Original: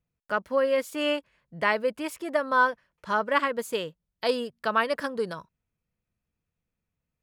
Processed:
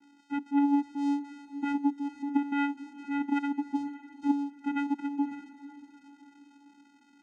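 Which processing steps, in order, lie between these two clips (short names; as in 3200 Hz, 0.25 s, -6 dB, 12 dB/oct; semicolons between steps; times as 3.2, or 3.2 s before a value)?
switching spikes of -21.5 dBFS; air absorption 320 m; vocoder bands 4, square 284 Hz; bell 210 Hz +8 dB 1 oct; diffused feedback echo 0.521 s, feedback 41%, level -15 dB; gain -4.5 dB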